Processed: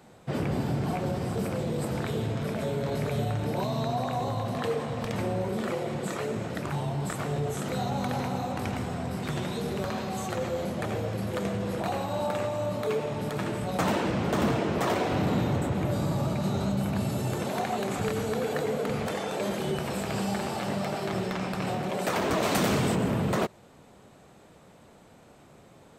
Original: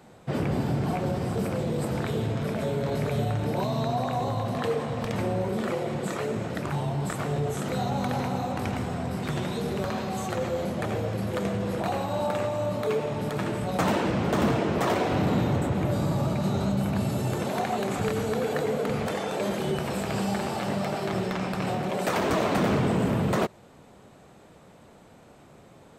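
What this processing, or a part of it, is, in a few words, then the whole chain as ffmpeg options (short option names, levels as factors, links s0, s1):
exciter from parts: -filter_complex "[0:a]asplit=2[s0][s1];[s1]highpass=f=3400:p=1,asoftclip=type=tanh:threshold=0.0335,volume=0.299[s2];[s0][s2]amix=inputs=2:normalize=0,asplit=3[s3][s4][s5];[s3]afade=t=out:st=22.42:d=0.02[s6];[s4]highshelf=f=3800:g=12,afade=t=in:st=22.42:d=0.02,afade=t=out:st=22.94:d=0.02[s7];[s5]afade=t=in:st=22.94:d=0.02[s8];[s6][s7][s8]amix=inputs=3:normalize=0,volume=0.794"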